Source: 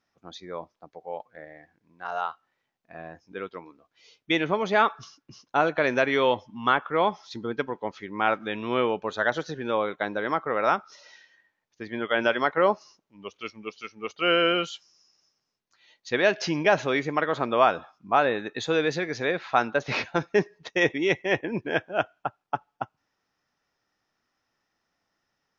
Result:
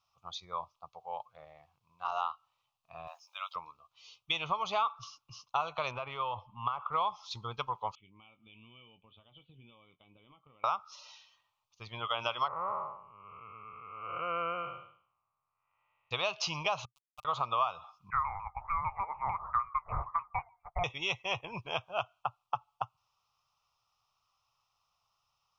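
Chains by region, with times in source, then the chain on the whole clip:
0:03.07–0:03.56: linear-phase brick-wall high-pass 530 Hz + high-shelf EQ 3,600 Hz +12 dB
0:05.91–0:06.94: Gaussian smoothing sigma 3 samples + downward compressor, threshold −26 dBFS
0:07.95–0:10.64: downward compressor 5 to 1, threshold −29 dBFS + formant resonators in series i + double-tracking delay 22 ms −11 dB
0:12.48–0:16.11: spectrum smeared in time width 348 ms + Butterworth low-pass 2,200 Hz 48 dB per octave
0:16.85–0:17.25: lower of the sound and its delayed copy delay 6.7 ms + noise gate −21 dBFS, range −35 dB + centre clipping without the shift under −49 dBFS
0:18.10–0:20.84: high-pass filter 940 Hz + voice inversion scrambler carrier 2,600 Hz + pitch modulation by a square or saw wave saw down 6.7 Hz, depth 100 cents
whole clip: drawn EQ curve 120 Hz 0 dB, 280 Hz −26 dB, 1,200 Hz +8 dB, 1,700 Hz −25 dB, 2,600 Hz +3 dB, 5,200 Hz 0 dB; downward compressor 4 to 1, threshold −29 dBFS

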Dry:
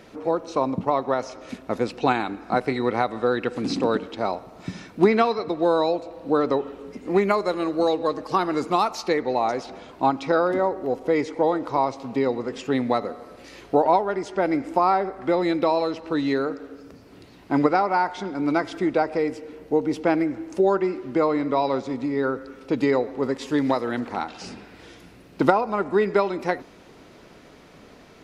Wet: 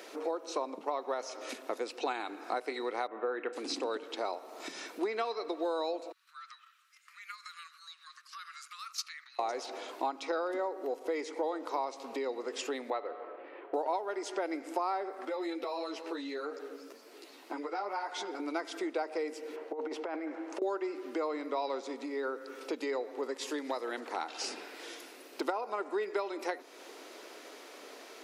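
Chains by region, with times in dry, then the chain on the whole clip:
0:03.07–0:03.53: low-pass filter 2,400 Hz 24 dB per octave + double-tracking delay 31 ms −13 dB + one half of a high-frequency compander decoder only
0:06.12–0:09.39: noise gate −33 dBFS, range −14 dB + downward compressor 16 to 1, threshold −33 dBFS + Butterworth high-pass 1,200 Hz 72 dB per octave
0:12.90–0:13.74: low-pass filter 3,300 Hz 24 dB per octave + parametric band 220 Hz −12 dB 0.46 octaves + low-pass that shuts in the quiet parts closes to 1,000 Hz, open at −20 dBFS
0:15.25–0:18.40: downward compressor 2 to 1, threshold −28 dBFS + string-ensemble chorus
0:19.56–0:20.62: compressor whose output falls as the input rises −24 dBFS, ratio −0.5 + resonant band-pass 920 Hz, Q 0.7
whole clip: downward compressor 3 to 1, threshold −34 dBFS; inverse Chebyshev high-pass filter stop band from 160 Hz, stop band 40 dB; high-shelf EQ 4,900 Hz +9 dB

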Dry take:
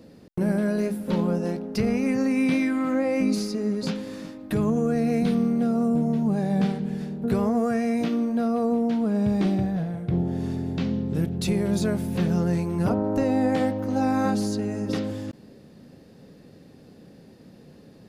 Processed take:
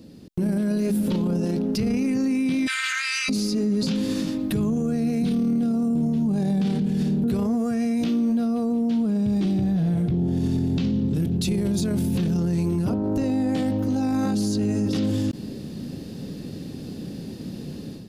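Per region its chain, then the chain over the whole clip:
0:02.66–0:03.28: ceiling on every frequency bin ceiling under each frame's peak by 30 dB + elliptic high-pass filter 1,400 Hz, stop band 60 dB + high-frequency loss of the air 64 metres
whole clip: automatic gain control; flat-topped bell 1,000 Hz −8 dB 2.6 octaves; brickwall limiter −21 dBFS; level +4 dB

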